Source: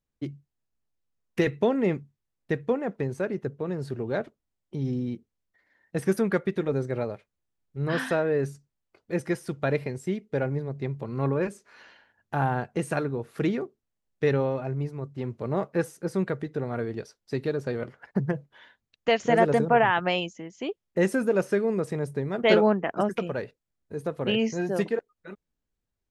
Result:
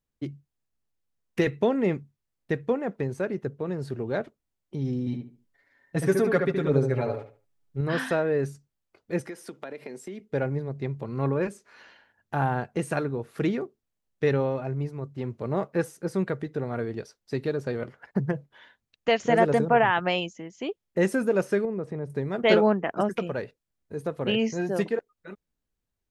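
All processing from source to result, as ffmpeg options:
-filter_complex "[0:a]asettb=1/sr,asplit=3[a][b][c];[a]atrim=end=5.064[d];[b]atrim=start=5.06:end=7.81,asetpts=PTS-STARTPTS,afade=t=in:d=0.004:c=qsin,afade=t=out:st=2.746:d=0.004:c=qsin,aecho=1:1:7.2:0.77,atrim=end_sample=121275,asplit=2[e][f];[f]adelay=72,lowpass=f=2.2k:p=1,volume=-4.5dB,asplit=2[g][h];[h]adelay=72,lowpass=f=2.2k:p=1,volume=0.28,asplit=2[i][j];[j]adelay=72,lowpass=f=2.2k:p=1,volume=0.28,asplit=2[k][l];[l]adelay=72,lowpass=f=2.2k:p=1,volume=0.28[m];[e][g][i][k][m]amix=inputs=5:normalize=0,atrim=end_sample=121275[n];[c]atrim=start=7.806[o];[d][n]acrossfade=d=0.004:c1=hsin:c2=qsin[p];[p][o]acrossfade=d=0.004:c1=qsin:c2=hsin,asettb=1/sr,asplit=3[q][r][s];[q]atrim=end=9.274[t];[r]atrim=start=9.27:end=10.2,asetpts=PTS-STARTPTS,afade=t=in:d=0.004:c=qsin,afade=t=out:st=0.926:d=0.004:c=qsin,highpass=f=220:w=0.5412,highpass=f=220:w=1.3066,acompressor=threshold=-33dB:ratio=12:attack=3.2:release=140:knee=1:detection=peak[u];[s]atrim=start=10.196[v];[t][u]acrossfade=d=0.004:c1=hsin:c2=qsin[w];[w][v]acrossfade=d=0.004:c1=qsin:c2=hsin,asettb=1/sr,asplit=3[x][y][z];[x]atrim=end=21.654[aa];[y]atrim=start=21.65:end=22.1,asetpts=PTS-STARTPTS,afade=t=in:d=0.004:c=qsin,afade=t=out:st=0.446:d=0.004:c=qsin,lowpass=f=1.1k:p=1,acompressor=threshold=-33dB:ratio=1.5:attack=3.2:release=140:knee=1:detection=peak[ab];[z]atrim=start=22.096[ac];[aa][ab]acrossfade=d=0.004:c1=hsin:c2=qsin[ad];[ad][ac]acrossfade=d=0.004:c1=qsin:c2=hsin"

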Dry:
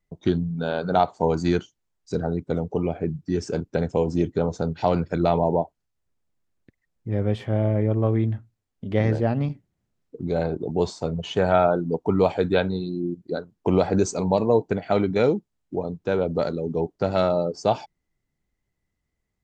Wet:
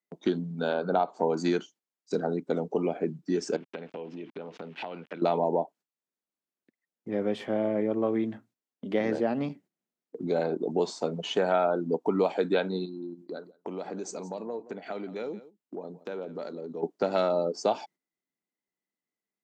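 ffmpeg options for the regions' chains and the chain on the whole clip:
-filter_complex "[0:a]asettb=1/sr,asplit=3[a][b][c];[a]atrim=end=0.734[d];[b]atrim=start=0.73:end=1.37,asetpts=PTS-STARTPTS,afade=t=in:d=0.004:c=qsin,afade=t=out:st=0.636:d=0.004:c=qsin,highshelf=f=2.9k:g=-11.5,bandreject=f=1.9k:w=7.6,acompressor=mode=upward:threshold=-30dB:ratio=2.5:attack=3.2:release=140:knee=2.83:detection=peak[e];[c]atrim=start=1.366[f];[d][e]acrossfade=d=0.004:c1=hsin:c2=qsin[g];[g][f]acrossfade=d=0.004:c1=qsin:c2=hsin,asettb=1/sr,asplit=3[h][i][j];[h]atrim=end=3.564[k];[i]atrim=start=3.56:end=5.22,asetpts=PTS-STARTPTS,afade=t=in:d=0.004:c=qsin,afade=t=out:st=1.656:d=0.004:c=qsin,aeval=exprs='val(0)*gte(abs(val(0)),0.0075)':c=same,acompressor=threshold=-34dB:ratio=8:attack=3.2:release=140:knee=1:detection=peak,lowpass=f=2.8k:t=q:w=2.7[l];[j]atrim=start=5.216[m];[k][l]acrossfade=d=0.004:c1=hsin:c2=qsin[n];[n][m]acrossfade=d=0.004:c1=qsin:c2=hsin,asettb=1/sr,asplit=3[o][p][q];[o]atrim=end=12.854[r];[p]atrim=start=12.85:end=16.83,asetpts=PTS-STARTPTS,afade=t=in:d=0.004:c=qsin,afade=t=out:st=3.976:d=0.004:c=qsin,acompressor=threshold=-36dB:ratio=3:attack=3.2:release=140:knee=1:detection=peak,aecho=1:1:173:0.15,atrim=end_sample=175518[s];[q]atrim=start=16.826[t];[r][s]acrossfade=d=0.004:c1=hsin:c2=qsin[u];[u][t]acrossfade=d=0.004:c1=qsin:c2=hsin,agate=range=-10dB:threshold=-47dB:ratio=16:detection=peak,highpass=f=210:w=0.5412,highpass=f=210:w=1.3066,acompressor=threshold=-23dB:ratio=2.5"

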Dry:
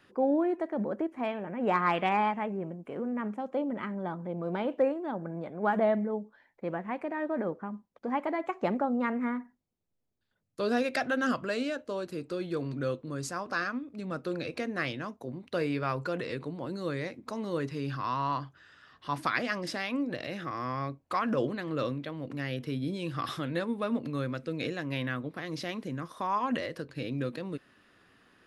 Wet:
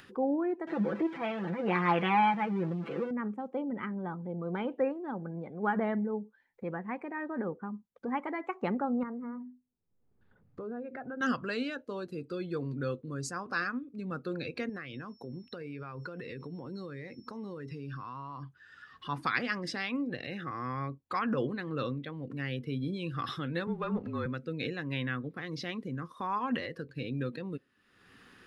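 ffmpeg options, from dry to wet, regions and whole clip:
-filter_complex "[0:a]asettb=1/sr,asplit=3[a][b][c];[a]atrim=end=0.674[d];[b]atrim=start=0.67:end=3.11,asetpts=PTS-STARTPTS,afade=t=in:d=0.004:c=qsin,afade=t=out:st=2.436:d=0.004:c=qsin,aeval=exprs='val(0)+0.5*0.0141*sgn(val(0))':c=same,highpass=140,lowpass=4.4k,aecho=1:1:6:0.79,atrim=end_sample=107604[e];[c]atrim=start=3.106[f];[d][e]acrossfade=d=0.004:c1=hsin:c2=qsin[g];[g][f]acrossfade=d=0.004:c1=qsin:c2=hsin,asettb=1/sr,asplit=3[h][i][j];[h]atrim=end=9.034[k];[i]atrim=start=9.03:end=11.21,asetpts=PTS-STARTPTS,afade=t=in:d=0.004:c=qsin,afade=t=out:st=2.176:d=0.004:c=qsin,lowpass=1.1k,bandreject=f=50:t=h:w=6,bandreject=f=100:t=h:w=6,bandreject=f=150:t=h:w=6,bandreject=f=200:t=h:w=6,bandreject=f=250:t=h:w=6,bandreject=f=300:t=h:w=6,bandreject=f=350:t=h:w=6,acompressor=threshold=-36dB:ratio=3:attack=3.2:release=140:knee=1:detection=peak[l];[j]atrim=start=11.206[m];[k][l]acrossfade=d=0.004:c1=hsin:c2=qsin[n];[n][m]acrossfade=d=0.004:c1=qsin:c2=hsin,asettb=1/sr,asplit=3[o][p][q];[o]atrim=end=14.694[r];[p]atrim=start=14.69:end=18.43,asetpts=PTS-STARTPTS,afade=t=in:d=0.004:c=qsin,afade=t=out:st=3.736:d=0.004:c=qsin,aeval=exprs='val(0)+0.000891*sin(2*PI*5400*n/s)':c=same,acompressor=threshold=-35dB:ratio=10:attack=3.2:release=140:knee=1:detection=peak[s];[q]atrim=start=18.426[t];[r][s]acrossfade=d=0.004:c1=hsin:c2=qsin[u];[u][t]acrossfade=d=0.004:c1=qsin:c2=hsin,asettb=1/sr,asplit=3[v][w][x];[v]atrim=end=23.674[y];[w]atrim=start=23.67:end=24.26,asetpts=PTS-STARTPTS,afade=t=in:d=0.004:c=qsin,afade=t=out:st=0.586:d=0.004:c=qsin,aeval=exprs='sgn(val(0))*max(abs(val(0))-0.00224,0)':c=same,asplit=2[z][aa];[aa]highpass=f=720:p=1,volume=13dB,asoftclip=type=tanh:threshold=-20.5dB[ab];[z][ab]amix=inputs=2:normalize=0,lowpass=f=1.5k:p=1,volume=-6dB,afreqshift=-34[ac];[x]atrim=start=24.256[ad];[y][ac]acrossfade=d=0.004:c1=hsin:c2=qsin[ae];[ae][ad]acrossfade=d=0.004:c1=qsin:c2=hsin,afftdn=nr=13:nf=-47,equalizer=f=315:t=o:w=0.33:g=-4,equalizer=f=630:t=o:w=0.33:g=-11,equalizer=f=1k:t=o:w=0.33:g=-3,acompressor=mode=upward:threshold=-40dB:ratio=2.5"

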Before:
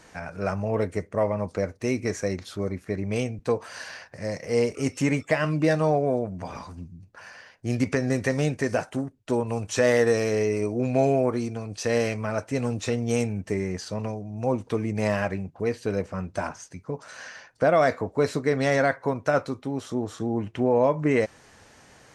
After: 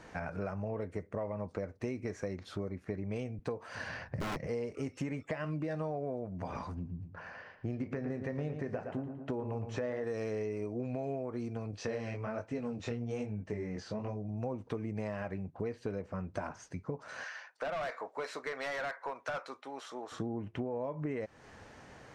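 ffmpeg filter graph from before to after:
-filter_complex "[0:a]asettb=1/sr,asplit=3[a][b][c];[a]atrim=end=3.754[d];[b]atrim=start=3.75:end=4.47,asetpts=PTS-STARTPTS,afade=t=in:d=0.004:c=qsin,afade=t=out:st=0.716:d=0.004:c=qsin,bass=f=250:g=14,treble=f=4k:g=-4,aeval=exprs='(mod(12.6*val(0)+1,2)-1)/12.6':c=same[e];[c]atrim=start=4.466[f];[d][e]acrossfade=d=0.004:c1=hsin:c2=qsin[g];[g][f]acrossfade=d=0.004:c1=qsin:c2=hsin,asettb=1/sr,asplit=3[h][i][j];[h]atrim=end=6.744[k];[i]atrim=start=6.74:end=10.04,asetpts=PTS-STARTPTS,afade=t=in:d=0.004:c=qsin,afade=t=out:st=3.296:d=0.004:c=qsin,aemphasis=mode=reproduction:type=75kf,asplit=2[l][m];[m]adelay=28,volume=-13dB[n];[l][n]amix=inputs=2:normalize=0,atrim=end_sample=145530,asplit=2[o][p];[p]adelay=113,lowpass=f=3.6k:p=1,volume=-10dB,asplit=2[q][r];[r]adelay=113,lowpass=f=3.6k:p=1,volume=0.39,asplit=2[s][t];[t]adelay=113,lowpass=f=3.6k:p=1,volume=0.39,asplit=2[u][v];[v]adelay=113,lowpass=f=3.6k:p=1,volume=0.39[w];[o][q][s][u][w]amix=inputs=5:normalize=0,atrim=end_sample=145530[x];[j]atrim=start=10.036[y];[k][x]acrossfade=d=0.004:c1=hsin:c2=qsin[z];[z][y]acrossfade=d=0.004:c1=qsin:c2=hsin,asettb=1/sr,asplit=3[aa][ab][ac];[aa]atrim=end=11.714[ad];[ab]atrim=start=11.71:end=14.29,asetpts=PTS-STARTPTS,afade=t=in:d=0.004:c=qsin,afade=t=out:st=2.576:d=0.004:c=qsin,lowpass=7.4k,flanger=delay=19:depth=7:speed=1.2[ae];[ac]atrim=start=14.286[af];[ad][ae]acrossfade=d=0.004:c1=hsin:c2=qsin[ag];[ag][af]acrossfade=d=0.004:c1=qsin:c2=hsin,asettb=1/sr,asplit=3[ah][ai][aj];[ah]atrim=end=17.244[ak];[ai]atrim=start=17.24:end=20.12,asetpts=PTS-STARTPTS,afade=t=in:d=0.004:c=qsin,afade=t=out:st=2.876:d=0.004:c=qsin,highpass=900,volume=27.5dB,asoftclip=hard,volume=-27.5dB[al];[aj]atrim=start=20.116[am];[ak][al]acrossfade=d=0.004:c1=hsin:c2=qsin[an];[an][am]acrossfade=d=0.004:c1=qsin:c2=hsin,lowpass=f=2k:p=1,alimiter=limit=-15.5dB:level=0:latency=1:release=119,acompressor=threshold=-36dB:ratio=5,volume=1dB"

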